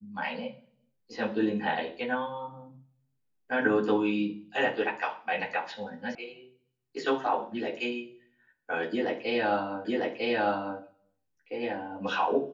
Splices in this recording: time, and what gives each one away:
6.15 sound cut off
9.85 repeat of the last 0.95 s

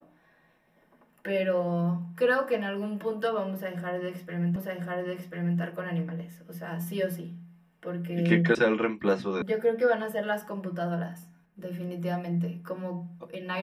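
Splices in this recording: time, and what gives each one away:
4.56 repeat of the last 1.04 s
8.55 sound cut off
9.42 sound cut off

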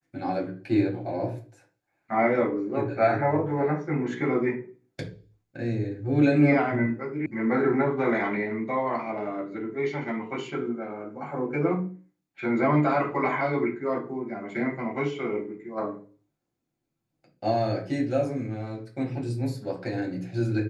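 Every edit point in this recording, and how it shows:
7.26 sound cut off

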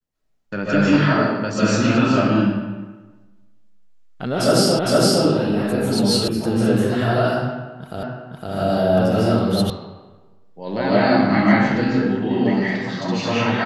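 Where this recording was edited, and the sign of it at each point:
4.79 repeat of the last 0.46 s
6.28 sound cut off
8.03 repeat of the last 0.51 s
9.7 sound cut off

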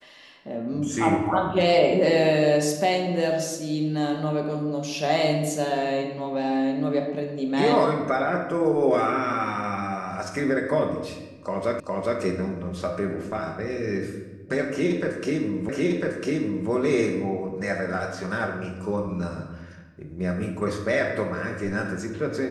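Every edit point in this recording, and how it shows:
11.8 repeat of the last 0.41 s
15.69 repeat of the last 1 s

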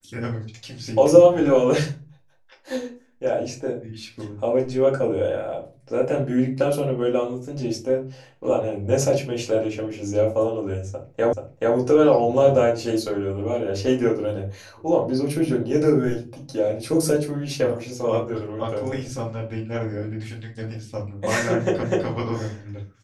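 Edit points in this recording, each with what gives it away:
11.33 repeat of the last 0.43 s
21.83 repeat of the last 0.25 s

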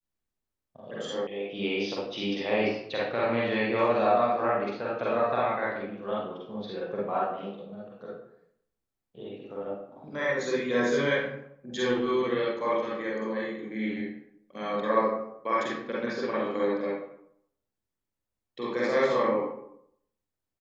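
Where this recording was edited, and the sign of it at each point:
1.27 sound cut off

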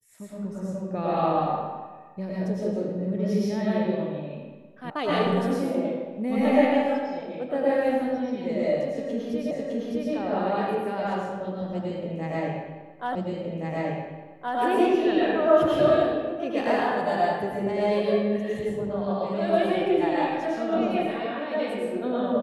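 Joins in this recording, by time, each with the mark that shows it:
4.9 sound cut off
9.51 repeat of the last 0.61 s
13.15 repeat of the last 1.42 s

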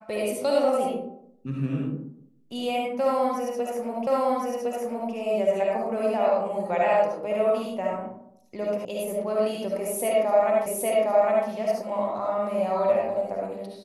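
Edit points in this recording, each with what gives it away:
4.07 repeat of the last 1.06 s
8.85 sound cut off
10.66 repeat of the last 0.81 s

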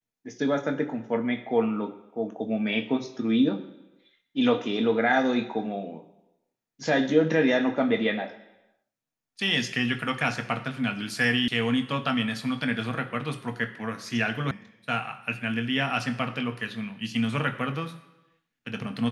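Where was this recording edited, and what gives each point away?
11.48 sound cut off
14.51 sound cut off

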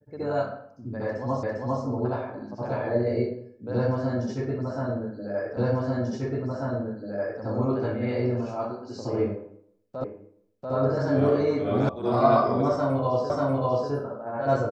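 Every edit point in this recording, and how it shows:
1.43 repeat of the last 0.4 s
5.57 repeat of the last 1.84 s
10.04 repeat of the last 0.69 s
11.89 sound cut off
13.3 repeat of the last 0.59 s

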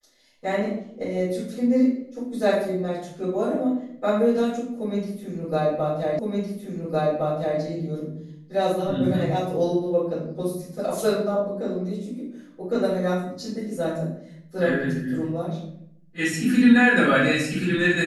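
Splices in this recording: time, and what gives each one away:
6.19 repeat of the last 1.41 s

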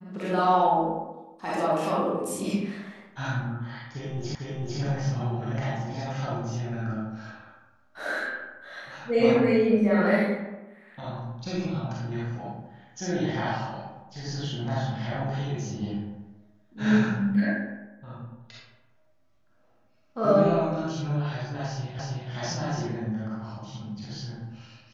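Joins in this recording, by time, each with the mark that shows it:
4.35 repeat of the last 0.45 s
21.99 repeat of the last 0.32 s

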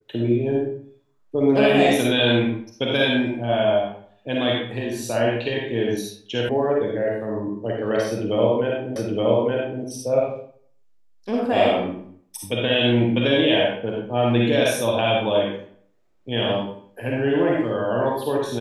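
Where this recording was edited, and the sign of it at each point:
6.49 sound cut off
8.96 repeat of the last 0.87 s

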